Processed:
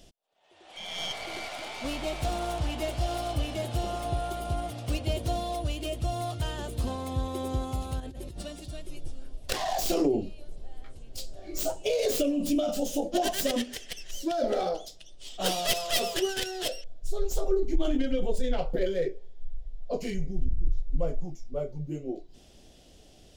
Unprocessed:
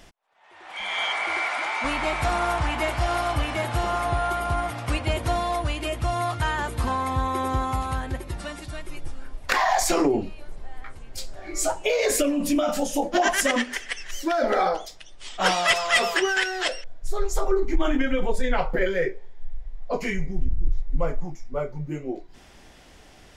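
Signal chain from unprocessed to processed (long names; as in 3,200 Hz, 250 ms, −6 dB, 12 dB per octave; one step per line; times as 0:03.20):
stylus tracing distortion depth 0.15 ms
flat-topped bell 1,400 Hz −12.5 dB
0:08.00–0:08.43: compressor whose output falls as the input rises −36 dBFS, ratio −1
level −3.5 dB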